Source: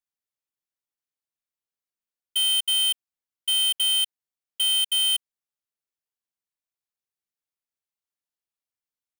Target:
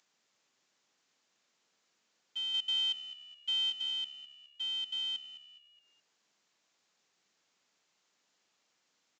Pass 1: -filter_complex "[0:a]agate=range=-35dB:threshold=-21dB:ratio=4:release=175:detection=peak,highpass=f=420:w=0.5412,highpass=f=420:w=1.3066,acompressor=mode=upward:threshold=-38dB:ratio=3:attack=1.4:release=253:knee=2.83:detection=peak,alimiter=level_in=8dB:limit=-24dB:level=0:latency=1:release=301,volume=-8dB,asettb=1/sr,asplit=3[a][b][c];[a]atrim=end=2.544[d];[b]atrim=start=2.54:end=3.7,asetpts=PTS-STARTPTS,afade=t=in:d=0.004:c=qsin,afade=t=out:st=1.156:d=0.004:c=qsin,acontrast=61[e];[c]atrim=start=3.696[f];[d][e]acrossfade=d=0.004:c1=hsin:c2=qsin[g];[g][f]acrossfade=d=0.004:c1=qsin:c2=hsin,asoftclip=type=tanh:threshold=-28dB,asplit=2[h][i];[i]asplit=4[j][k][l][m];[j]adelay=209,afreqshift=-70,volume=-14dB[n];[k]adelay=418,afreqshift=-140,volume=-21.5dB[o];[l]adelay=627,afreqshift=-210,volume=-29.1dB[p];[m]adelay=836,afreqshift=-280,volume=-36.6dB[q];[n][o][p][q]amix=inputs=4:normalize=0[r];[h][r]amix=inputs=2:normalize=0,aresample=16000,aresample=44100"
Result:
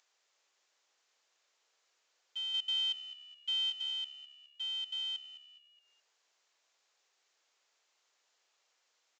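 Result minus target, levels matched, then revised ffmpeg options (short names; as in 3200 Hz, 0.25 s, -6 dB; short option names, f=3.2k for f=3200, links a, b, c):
500 Hz band -3.5 dB
-filter_complex "[0:a]agate=range=-35dB:threshold=-21dB:ratio=4:release=175:detection=peak,highpass=f=160:w=0.5412,highpass=f=160:w=1.3066,acompressor=mode=upward:threshold=-38dB:ratio=3:attack=1.4:release=253:knee=2.83:detection=peak,alimiter=level_in=8dB:limit=-24dB:level=0:latency=1:release=301,volume=-8dB,asettb=1/sr,asplit=3[a][b][c];[a]atrim=end=2.544[d];[b]atrim=start=2.54:end=3.7,asetpts=PTS-STARTPTS,afade=t=in:d=0.004:c=qsin,afade=t=out:st=1.156:d=0.004:c=qsin,acontrast=61[e];[c]atrim=start=3.696[f];[d][e]acrossfade=d=0.004:c1=hsin:c2=qsin[g];[g][f]acrossfade=d=0.004:c1=qsin:c2=hsin,asoftclip=type=tanh:threshold=-28dB,asplit=2[h][i];[i]asplit=4[j][k][l][m];[j]adelay=209,afreqshift=-70,volume=-14dB[n];[k]adelay=418,afreqshift=-140,volume=-21.5dB[o];[l]adelay=627,afreqshift=-210,volume=-29.1dB[p];[m]adelay=836,afreqshift=-280,volume=-36.6dB[q];[n][o][p][q]amix=inputs=4:normalize=0[r];[h][r]amix=inputs=2:normalize=0,aresample=16000,aresample=44100"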